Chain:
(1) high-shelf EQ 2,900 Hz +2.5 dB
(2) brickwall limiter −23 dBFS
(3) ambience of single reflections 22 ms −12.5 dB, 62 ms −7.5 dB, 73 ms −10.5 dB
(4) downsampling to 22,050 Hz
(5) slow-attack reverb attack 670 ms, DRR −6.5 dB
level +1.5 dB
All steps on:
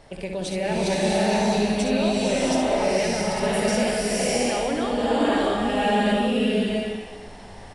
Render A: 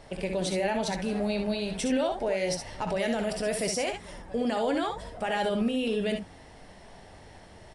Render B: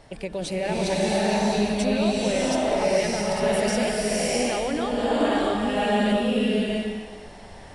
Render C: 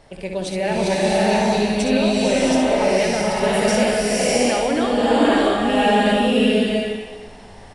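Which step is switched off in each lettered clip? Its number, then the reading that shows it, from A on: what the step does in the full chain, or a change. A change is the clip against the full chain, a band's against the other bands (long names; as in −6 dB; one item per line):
5, change in momentary loudness spread −3 LU
3, change in momentary loudness spread −2 LU
2, average gain reduction 2.5 dB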